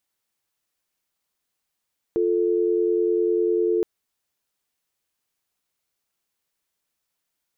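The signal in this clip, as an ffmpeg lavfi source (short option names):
-f lavfi -i "aevalsrc='0.0891*(sin(2*PI*350*t)+sin(2*PI*440*t))':d=1.67:s=44100"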